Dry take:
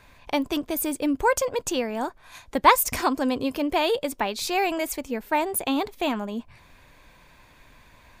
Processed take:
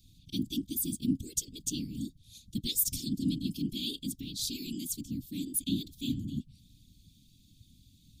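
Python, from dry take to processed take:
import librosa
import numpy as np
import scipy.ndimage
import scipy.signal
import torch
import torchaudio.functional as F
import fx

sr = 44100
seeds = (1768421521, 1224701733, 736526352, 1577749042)

y = fx.whisperise(x, sr, seeds[0])
y = scipy.signal.sosfilt(scipy.signal.cheby1(4, 1.0, [280.0, 3400.0], 'bandstop', fs=sr, output='sos'), y)
y = F.gain(torch.from_numpy(y), -3.0).numpy()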